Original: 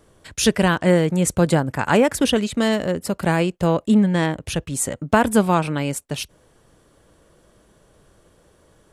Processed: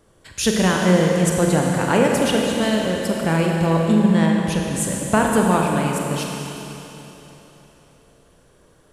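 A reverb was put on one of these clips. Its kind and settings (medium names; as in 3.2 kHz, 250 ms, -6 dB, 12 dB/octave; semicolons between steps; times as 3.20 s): Schroeder reverb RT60 3.4 s, combs from 33 ms, DRR -0.5 dB; trim -2.5 dB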